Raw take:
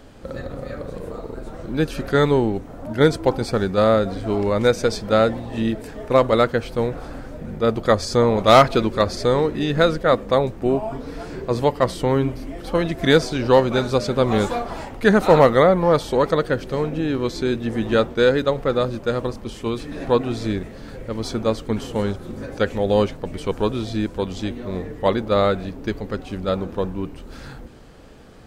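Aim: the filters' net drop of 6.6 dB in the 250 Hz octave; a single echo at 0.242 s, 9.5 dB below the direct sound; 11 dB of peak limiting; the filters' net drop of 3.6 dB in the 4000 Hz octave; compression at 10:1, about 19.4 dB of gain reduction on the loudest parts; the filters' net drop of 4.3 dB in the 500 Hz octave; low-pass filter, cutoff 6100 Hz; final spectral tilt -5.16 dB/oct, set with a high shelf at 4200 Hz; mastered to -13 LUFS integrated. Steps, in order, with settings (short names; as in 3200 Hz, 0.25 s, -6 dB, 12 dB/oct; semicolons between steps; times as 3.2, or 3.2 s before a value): LPF 6100 Hz; bell 250 Hz -8 dB; bell 500 Hz -3 dB; bell 4000 Hz -5 dB; high shelf 4200 Hz +3 dB; compressor 10:1, threshold -29 dBFS; limiter -29 dBFS; echo 0.242 s -9.5 dB; gain +26 dB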